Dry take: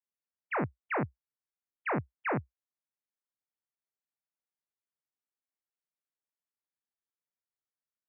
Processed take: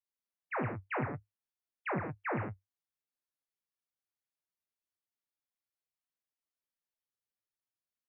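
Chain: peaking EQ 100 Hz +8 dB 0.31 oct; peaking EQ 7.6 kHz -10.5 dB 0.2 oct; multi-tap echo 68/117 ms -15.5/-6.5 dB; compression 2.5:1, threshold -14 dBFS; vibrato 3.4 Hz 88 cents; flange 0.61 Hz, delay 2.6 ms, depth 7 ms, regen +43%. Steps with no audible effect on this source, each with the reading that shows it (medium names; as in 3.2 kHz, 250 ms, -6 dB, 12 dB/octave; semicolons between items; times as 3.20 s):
peaking EQ 7.6 kHz: input has nothing above 2.7 kHz; compression, threshold -14 dBFS: peak at its input -20.0 dBFS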